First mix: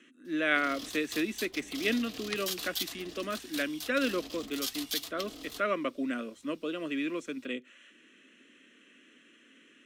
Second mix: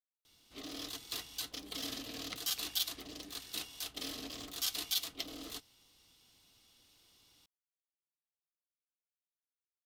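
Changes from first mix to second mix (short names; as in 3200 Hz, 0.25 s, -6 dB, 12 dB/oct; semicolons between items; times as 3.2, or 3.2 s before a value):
speech: muted; second sound -8.5 dB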